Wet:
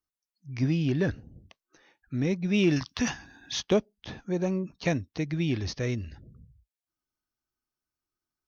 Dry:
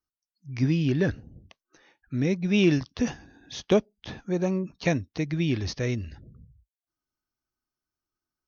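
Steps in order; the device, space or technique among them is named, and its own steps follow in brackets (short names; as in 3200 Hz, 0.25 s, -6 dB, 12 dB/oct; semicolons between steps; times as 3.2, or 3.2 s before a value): 2.76–3.63 EQ curve 260 Hz 0 dB, 460 Hz -5 dB, 1000 Hz +8 dB; parallel distortion (in parallel at -13 dB: hard clip -23 dBFS, distortion -9 dB); on the sum: gain -3.5 dB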